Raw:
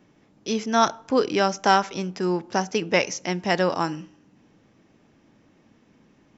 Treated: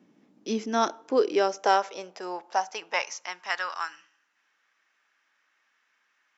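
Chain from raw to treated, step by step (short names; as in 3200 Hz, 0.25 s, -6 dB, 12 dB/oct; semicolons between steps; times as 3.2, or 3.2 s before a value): high-pass sweep 220 Hz -> 1500 Hz, 0.19–3.92; gain -6.5 dB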